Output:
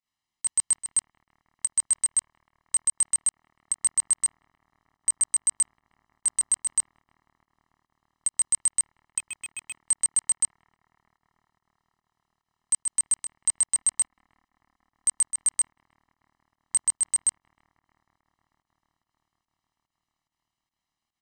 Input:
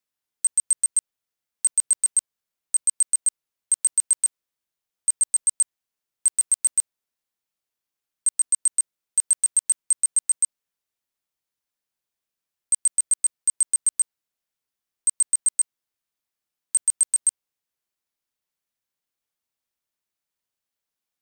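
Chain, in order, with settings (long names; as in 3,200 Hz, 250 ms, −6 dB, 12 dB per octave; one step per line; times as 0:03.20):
in parallel at +0.5 dB: output level in coarse steps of 12 dB
on the sum: high-shelf EQ 9,800 Hz +9.5 dB
comb filter 1 ms, depth 86%
on a send: bucket-brigade delay 313 ms, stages 4,096, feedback 79%, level −18.5 dB
on the sum: fake sidechain pumping 145 BPM, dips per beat 1, −18 dB, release 98 ms
0:09.18–0:09.82: gain into a clipping stage and back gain 22 dB
high-frequency loss of the air 100 metres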